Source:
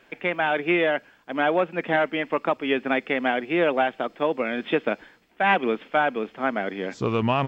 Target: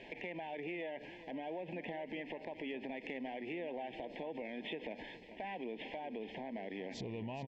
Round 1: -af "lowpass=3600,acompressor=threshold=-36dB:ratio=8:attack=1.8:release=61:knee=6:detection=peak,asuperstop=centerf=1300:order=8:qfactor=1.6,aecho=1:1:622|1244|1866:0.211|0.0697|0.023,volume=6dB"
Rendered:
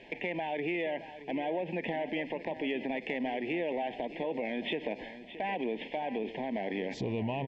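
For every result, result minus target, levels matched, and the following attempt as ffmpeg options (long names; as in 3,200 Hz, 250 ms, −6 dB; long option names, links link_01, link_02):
echo 202 ms late; downward compressor: peak gain reduction −9 dB
-af "lowpass=3600,acompressor=threshold=-36dB:ratio=8:attack=1.8:release=61:knee=6:detection=peak,asuperstop=centerf=1300:order=8:qfactor=1.6,aecho=1:1:420|840|1260:0.211|0.0697|0.023,volume=6dB"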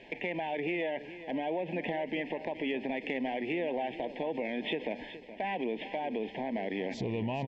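downward compressor: peak gain reduction −9 dB
-af "lowpass=3600,acompressor=threshold=-46.5dB:ratio=8:attack=1.8:release=61:knee=6:detection=peak,asuperstop=centerf=1300:order=8:qfactor=1.6,aecho=1:1:420|840|1260:0.211|0.0697|0.023,volume=6dB"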